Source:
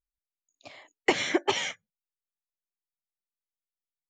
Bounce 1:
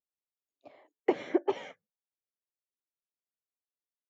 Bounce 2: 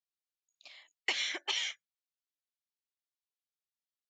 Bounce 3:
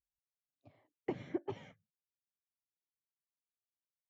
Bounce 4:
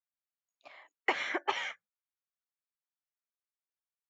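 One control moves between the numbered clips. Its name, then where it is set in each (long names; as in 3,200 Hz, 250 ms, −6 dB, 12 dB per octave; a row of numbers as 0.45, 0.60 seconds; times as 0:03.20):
resonant band-pass, frequency: 420, 3,900, 110, 1,300 Hertz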